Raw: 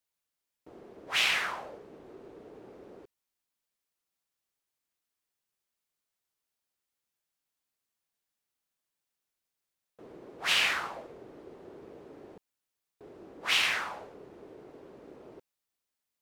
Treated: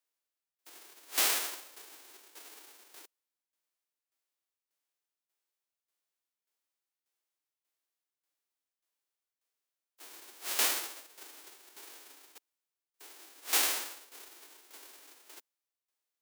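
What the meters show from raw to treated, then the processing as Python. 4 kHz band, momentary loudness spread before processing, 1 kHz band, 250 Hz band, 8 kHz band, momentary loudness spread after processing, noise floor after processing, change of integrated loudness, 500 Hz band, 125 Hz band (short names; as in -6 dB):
-5.5 dB, 18 LU, -5.0 dB, -6.5 dB, +8.0 dB, 22 LU, under -85 dBFS, -2.0 dB, -5.0 dB, under -25 dB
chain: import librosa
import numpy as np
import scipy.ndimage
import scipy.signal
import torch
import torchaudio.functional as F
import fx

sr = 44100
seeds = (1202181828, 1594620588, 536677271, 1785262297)

y = fx.envelope_flatten(x, sr, power=0.1)
y = scipy.signal.sosfilt(scipy.signal.butter(8, 280.0, 'highpass', fs=sr, output='sos'), y)
y = fx.tremolo_shape(y, sr, shape='saw_down', hz=1.7, depth_pct=75)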